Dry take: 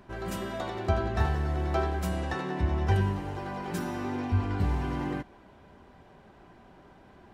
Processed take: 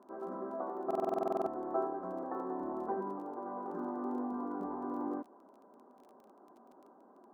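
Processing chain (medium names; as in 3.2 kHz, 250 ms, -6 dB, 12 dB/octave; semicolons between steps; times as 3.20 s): elliptic band-pass 240–1200 Hz, stop band 40 dB; crackle 20 per s -49 dBFS; buffer glitch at 0.86 s, samples 2048, times 12; trim -3 dB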